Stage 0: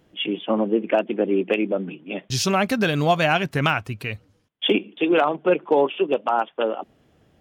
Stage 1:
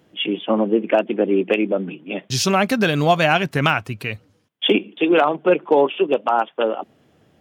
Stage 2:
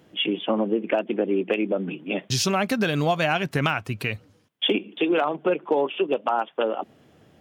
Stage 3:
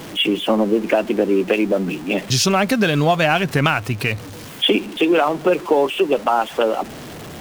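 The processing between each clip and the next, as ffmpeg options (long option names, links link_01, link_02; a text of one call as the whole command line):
ffmpeg -i in.wav -af "highpass=100,volume=3dB" out.wav
ffmpeg -i in.wav -af "acompressor=threshold=-24dB:ratio=2.5,volume=1.5dB" out.wav
ffmpeg -i in.wav -af "aeval=exprs='val(0)+0.5*0.0178*sgn(val(0))':channel_layout=same,volume=5.5dB" out.wav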